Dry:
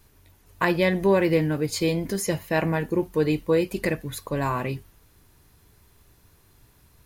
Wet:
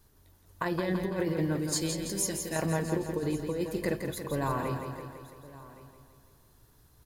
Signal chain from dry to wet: 1.59–2.56 s: graphic EQ 125/500/1000/8000 Hz -9/-7/-10/+8 dB; delay 1118 ms -19.5 dB; compressor with a negative ratio -22 dBFS, ratio -0.5; peaking EQ 2.4 kHz -8 dB 0.56 oct; feedback delay 167 ms, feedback 59%, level -6.5 dB; trim -6.5 dB

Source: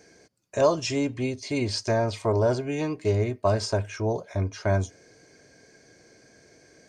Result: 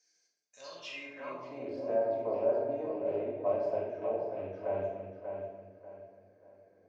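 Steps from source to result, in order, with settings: rattle on loud lows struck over -25 dBFS, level -22 dBFS; treble shelf 5.6 kHz -10 dB; on a send: filtered feedback delay 589 ms, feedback 33%, low-pass 3.7 kHz, level -6 dB; on the sum: simulated room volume 570 m³, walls mixed, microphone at 2 m; band-pass sweep 5.8 kHz -> 590 Hz, 0.55–1.74 s; trim -8 dB

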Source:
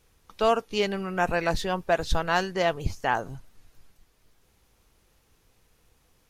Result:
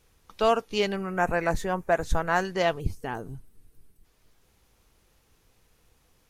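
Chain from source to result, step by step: 0.96–2.45 s: high-order bell 3.8 kHz -10 dB 1.2 oct; 2.80–4.05 s: time-frequency box 480–7700 Hz -10 dB

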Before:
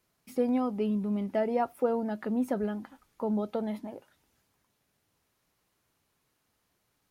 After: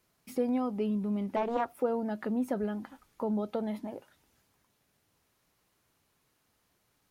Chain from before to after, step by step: in parallel at +1 dB: compression, threshold -36 dBFS, peak gain reduction 13.5 dB; 1.36–1.78 s: on the sum: loudspeaker Doppler distortion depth 0.43 ms; trim -4.5 dB

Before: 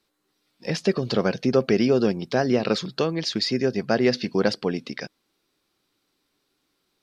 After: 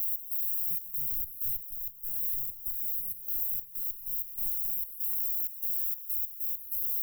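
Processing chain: peaking EQ 260 Hz -3.5 dB 1.7 oct; waveshaping leveller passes 2; static phaser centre 500 Hz, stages 8; added noise white -34 dBFS; treble shelf 3.3 kHz +7.5 dB; small resonant body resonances 410/930/2900 Hz, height 16 dB, ringing for 75 ms; 1.71–4.41 s: compression 4:1, threshold -13 dBFS, peak gain reduction 9.5 dB; trance gate "x.xxx.xx.x.x.xx" 96 bpm -12 dB; inverse Chebyshev band-stop 250–5500 Hz, stop band 60 dB; warped record 33 1/3 rpm, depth 100 cents

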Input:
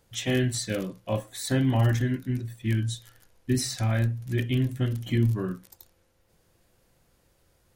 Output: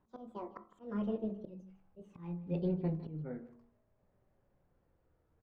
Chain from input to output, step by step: gliding tape speed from 198% -> 88%; low-pass 1.2 kHz 12 dB/octave; slow attack 389 ms; de-hum 47.37 Hz, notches 28; on a send: delay 156 ms -17 dB; on the sum: trim -7 dB

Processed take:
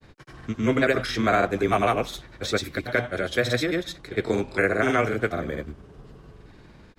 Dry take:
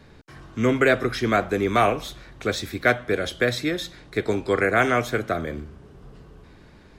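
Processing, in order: granulator, grains 20 per s, pitch spread up and down by 0 st; loudness maximiser +10 dB; trim -9 dB

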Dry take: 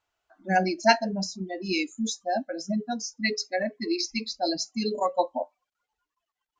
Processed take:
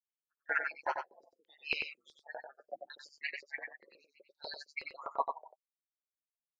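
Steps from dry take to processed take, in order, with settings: expander on every frequency bin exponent 2; reverb removal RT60 1.1 s; spectral gate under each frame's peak -20 dB weak; peaking EQ 93 Hz -10 dB 2 oct; in parallel at -2 dB: compression, threshold -57 dBFS, peak gain reduction 21.5 dB; on the sum: LFO low-pass saw down 0.69 Hz 410–3500 Hz; ring modulator 74 Hz; LFO high-pass saw up 8.1 Hz 410–3500 Hz; on a send: delay 93 ms -5.5 dB; on the sum: trim +9.5 dB

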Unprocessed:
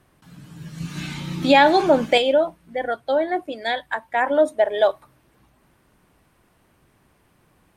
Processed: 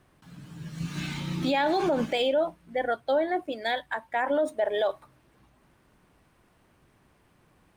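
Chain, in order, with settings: median filter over 3 samples; peak limiter -15 dBFS, peak gain reduction 11 dB; trim -2.5 dB

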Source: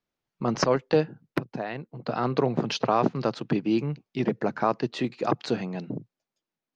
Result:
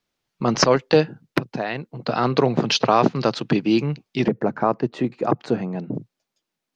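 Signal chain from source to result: peaking EQ 4.5 kHz +5.5 dB 2.3 oct, from 4.28 s -11.5 dB, from 5.95 s +4 dB; trim +5.5 dB

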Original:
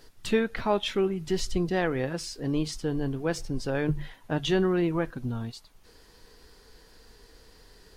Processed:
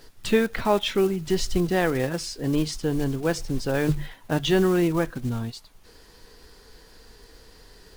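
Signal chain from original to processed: block-companded coder 5-bit; trim +4 dB

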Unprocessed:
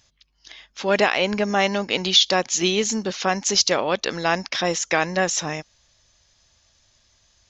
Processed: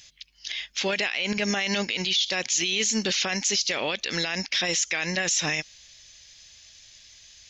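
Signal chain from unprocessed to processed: resonant high shelf 1.6 kHz +10.5 dB, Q 1.5; peak limiter -15.5 dBFS, peak gain reduction 23.5 dB

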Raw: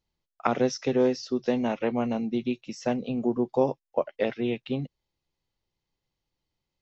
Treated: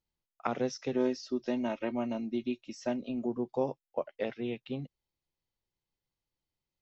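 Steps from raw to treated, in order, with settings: 0.94–3.26 s: comb 3.2 ms, depth 62%; trim -7.5 dB

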